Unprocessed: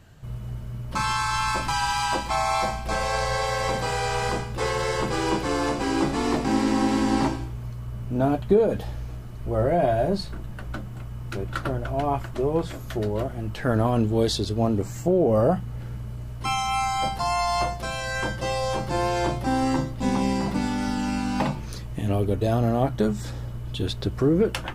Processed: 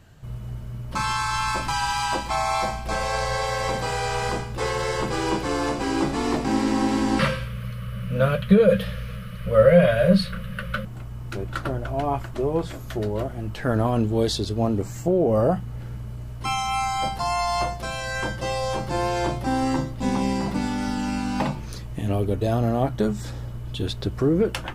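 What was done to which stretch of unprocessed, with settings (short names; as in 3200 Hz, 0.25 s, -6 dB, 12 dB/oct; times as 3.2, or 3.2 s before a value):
7.19–10.85 EQ curve 110 Hz 0 dB, 190 Hz +13 dB, 310 Hz -27 dB, 530 Hz +14 dB, 780 Hz -17 dB, 1200 Hz +10 dB, 3100 Hz +12 dB, 7300 Hz -4 dB, 10000 Hz +8 dB, 15000 Hz +6 dB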